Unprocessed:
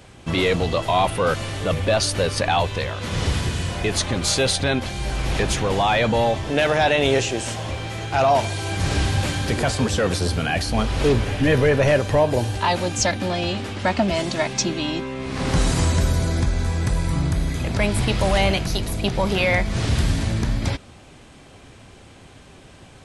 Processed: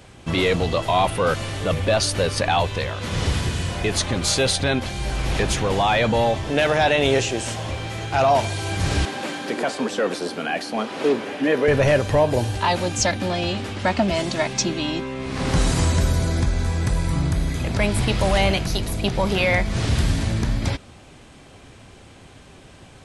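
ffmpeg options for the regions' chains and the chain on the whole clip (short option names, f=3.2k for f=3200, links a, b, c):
-filter_complex "[0:a]asettb=1/sr,asplit=3[a][b][c];[a]atrim=end=9.054[d];[b]atrim=start=9.05:end=11.68,asetpts=PTS-STARTPTS,afade=t=in:d=0.004:c=qsin,afade=t=out:st=2.626:d=0.004:c=qsin,highpass=f=230:w=0.5412,highpass=f=230:w=1.3066,highshelf=f=3.4k:g=-8.5[e];[c]atrim=start=11.676[f];[d][e]acrossfade=d=0.004:c1=hsin:c2=qsin[g];[g][f]acrossfade=d=0.004:c1=qsin:c2=hsin"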